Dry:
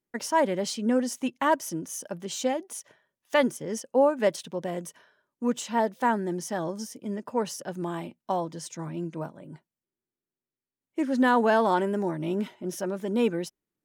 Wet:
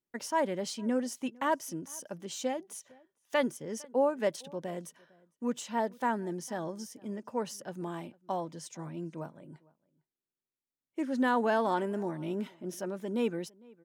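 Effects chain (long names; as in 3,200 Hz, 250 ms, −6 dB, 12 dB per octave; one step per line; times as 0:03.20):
slap from a distant wall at 78 metres, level −25 dB
level −6 dB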